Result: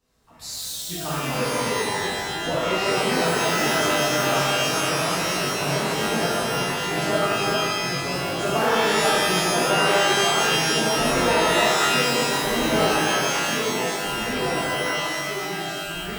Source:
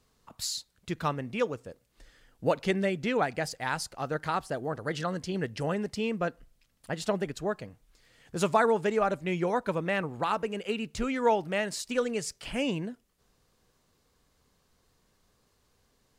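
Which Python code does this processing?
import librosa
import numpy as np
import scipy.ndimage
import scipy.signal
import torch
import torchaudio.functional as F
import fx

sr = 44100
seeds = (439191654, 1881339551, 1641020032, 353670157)

y = fx.echo_pitch(x, sr, ms=108, semitones=-2, count=3, db_per_echo=-3.0)
y = fx.rev_shimmer(y, sr, seeds[0], rt60_s=1.6, semitones=12, shimmer_db=-2, drr_db=-10.5)
y = y * 10.0 ** (-8.5 / 20.0)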